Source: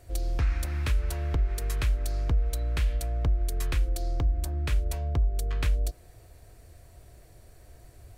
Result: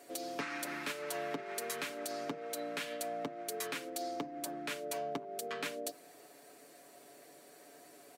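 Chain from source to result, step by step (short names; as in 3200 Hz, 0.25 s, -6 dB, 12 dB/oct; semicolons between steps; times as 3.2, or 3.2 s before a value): steep high-pass 210 Hz 36 dB/oct; limiter -28.5 dBFS, peak gain reduction 8 dB; comb 7 ms, depth 53%; gain +1.5 dB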